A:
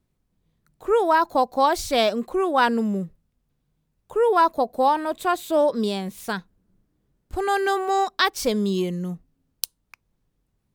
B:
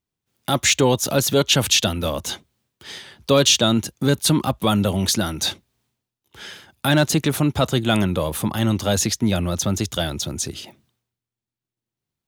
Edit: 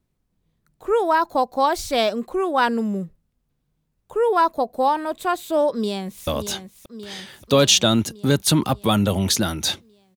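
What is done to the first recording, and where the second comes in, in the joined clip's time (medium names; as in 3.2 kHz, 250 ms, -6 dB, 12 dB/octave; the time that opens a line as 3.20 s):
A
5.73–6.27 s: echo throw 580 ms, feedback 65%, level -9 dB
6.27 s: go over to B from 2.05 s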